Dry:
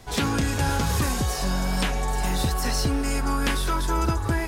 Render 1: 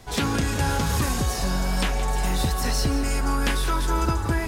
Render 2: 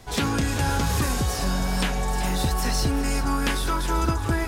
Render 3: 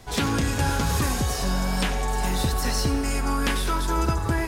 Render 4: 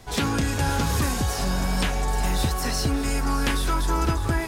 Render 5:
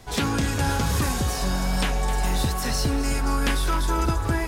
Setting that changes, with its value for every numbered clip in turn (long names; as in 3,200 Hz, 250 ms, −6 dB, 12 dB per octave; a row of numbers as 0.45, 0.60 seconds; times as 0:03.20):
feedback echo at a low word length, delay time: 171, 384, 91, 604, 261 milliseconds